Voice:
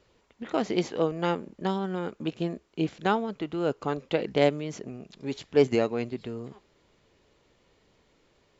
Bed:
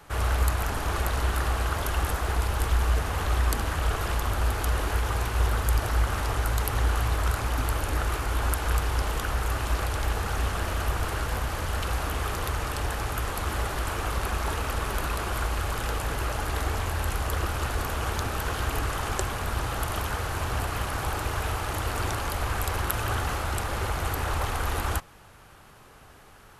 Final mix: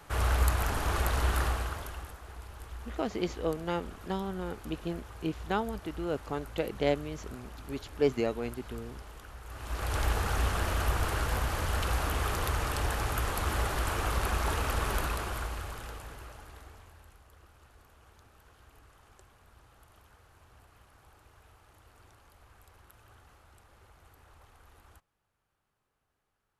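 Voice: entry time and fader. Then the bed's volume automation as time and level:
2.45 s, -5.5 dB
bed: 1.43 s -2 dB
2.17 s -19.5 dB
9.43 s -19.5 dB
9.96 s -1.5 dB
14.95 s -1.5 dB
17.25 s -30 dB

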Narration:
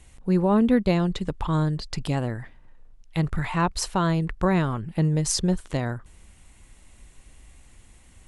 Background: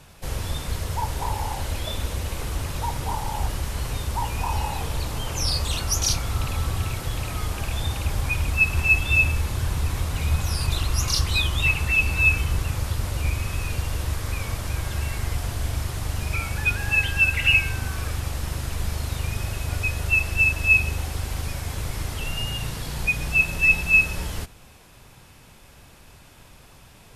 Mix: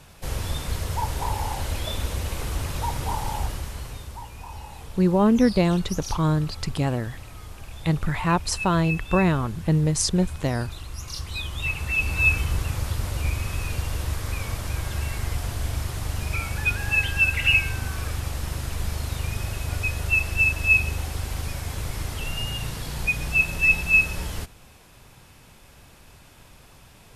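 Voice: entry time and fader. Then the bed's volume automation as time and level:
4.70 s, +1.5 dB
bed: 3.31 s 0 dB
4.29 s -13 dB
10.99 s -13 dB
12.25 s -1 dB

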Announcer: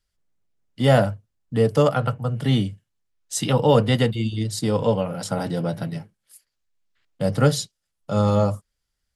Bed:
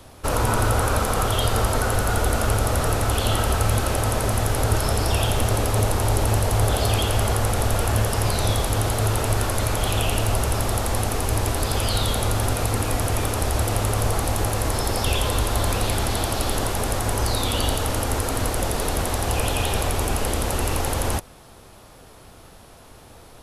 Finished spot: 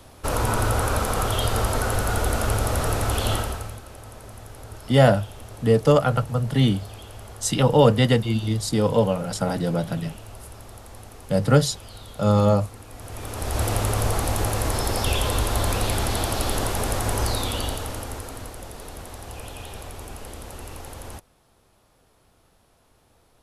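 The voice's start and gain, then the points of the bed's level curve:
4.10 s, +1.0 dB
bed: 3.34 s -2 dB
3.82 s -19.5 dB
12.89 s -19.5 dB
13.63 s -1 dB
17.24 s -1 dB
18.59 s -14.5 dB

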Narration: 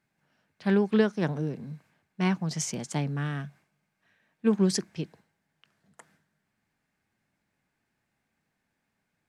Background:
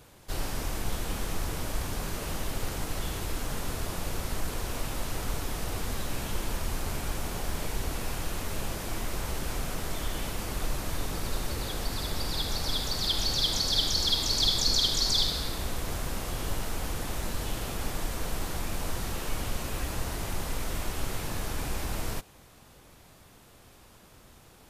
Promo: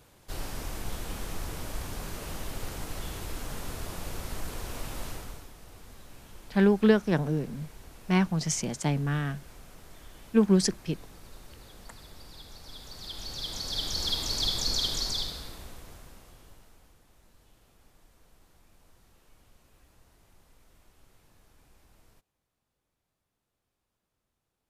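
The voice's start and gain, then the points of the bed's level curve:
5.90 s, +2.0 dB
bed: 5.08 s -4 dB
5.54 s -17 dB
12.62 s -17 dB
14.06 s -3.5 dB
14.95 s -3.5 dB
17.03 s -28.5 dB

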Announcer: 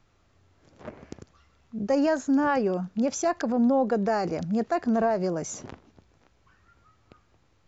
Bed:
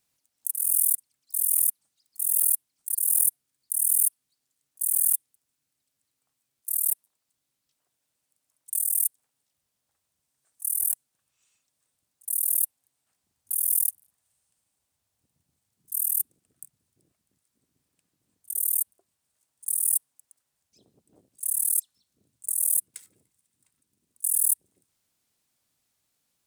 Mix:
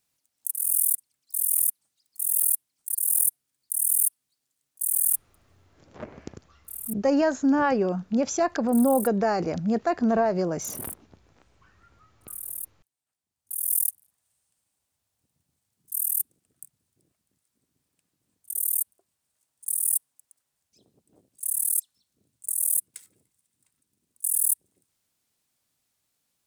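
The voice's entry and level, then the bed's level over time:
5.15 s, +1.5 dB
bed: 5.6 s -0.5 dB
5.85 s -11.5 dB
13.28 s -11.5 dB
13.74 s -0.5 dB

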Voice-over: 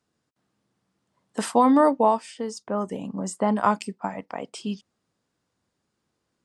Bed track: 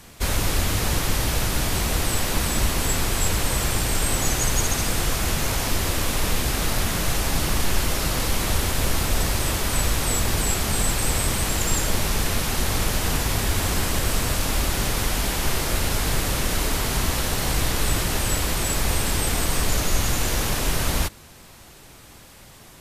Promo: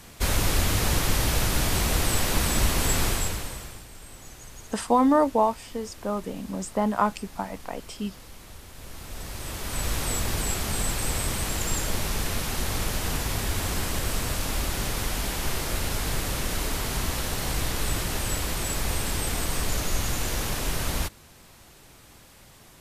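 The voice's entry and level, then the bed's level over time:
3.35 s, -2.0 dB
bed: 3.08 s -1 dB
3.88 s -22.5 dB
8.67 s -22.5 dB
9.94 s -5 dB

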